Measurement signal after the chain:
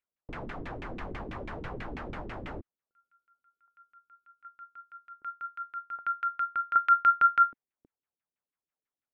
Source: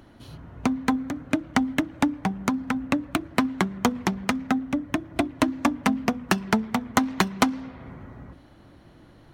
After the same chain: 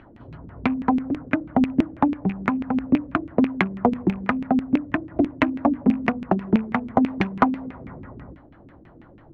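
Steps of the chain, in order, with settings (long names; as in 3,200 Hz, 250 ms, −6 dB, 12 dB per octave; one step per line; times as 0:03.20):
loose part that buzzes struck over −31 dBFS, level −29 dBFS
auto-filter low-pass saw down 6.1 Hz 240–2,500 Hz
dynamic equaliser 1,300 Hz, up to −3 dB, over −29 dBFS, Q 1.1
level +1 dB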